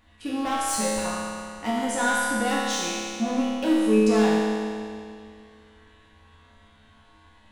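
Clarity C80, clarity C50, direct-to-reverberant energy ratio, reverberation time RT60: -1.0 dB, -3.0 dB, -8.5 dB, 2.3 s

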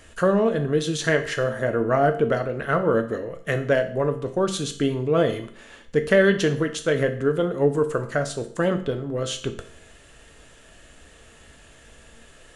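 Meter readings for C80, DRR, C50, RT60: 15.5 dB, 6.0 dB, 12.0 dB, 0.55 s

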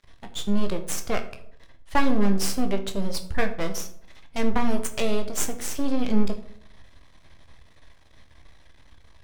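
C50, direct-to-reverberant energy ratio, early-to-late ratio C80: 12.0 dB, 5.5 dB, 15.5 dB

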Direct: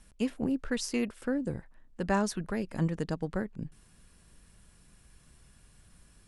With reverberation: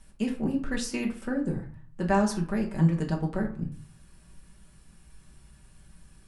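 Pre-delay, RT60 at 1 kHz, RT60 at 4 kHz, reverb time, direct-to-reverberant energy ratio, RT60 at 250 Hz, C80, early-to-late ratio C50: 5 ms, 0.55 s, 0.30 s, 0.50 s, -0.5 dB, 0.55 s, 14.5 dB, 10.5 dB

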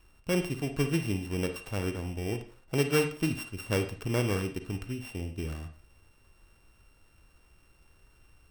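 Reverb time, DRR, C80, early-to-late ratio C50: 0.40 s, 7.0 dB, 14.5 dB, 9.5 dB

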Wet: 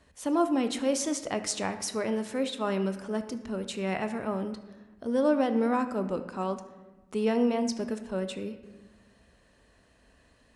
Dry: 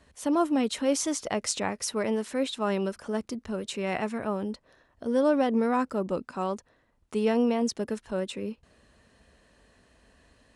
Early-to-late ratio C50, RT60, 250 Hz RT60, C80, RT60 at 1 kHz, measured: 11.0 dB, 1.2 s, 1.8 s, 12.5 dB, 1.1 s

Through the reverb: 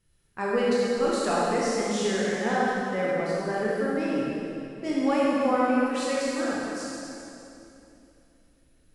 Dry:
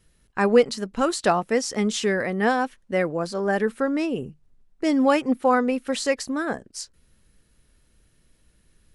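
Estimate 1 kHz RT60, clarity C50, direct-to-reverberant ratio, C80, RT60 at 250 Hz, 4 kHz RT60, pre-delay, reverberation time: 2.7 s, -4.5 dB, -7.0 dB, -2.0 dB, 3.4 s, 2.5 s, 22 ms, 2.9 s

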